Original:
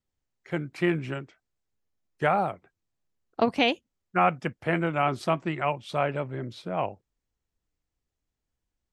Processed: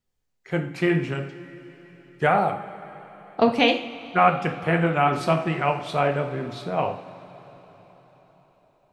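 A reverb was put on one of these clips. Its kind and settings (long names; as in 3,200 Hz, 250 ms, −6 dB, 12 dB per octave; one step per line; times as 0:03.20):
coupled-rooms reverb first 0.48 s, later 4.7 s, from −18 dB, DRR 3.5 dB
level +3 dB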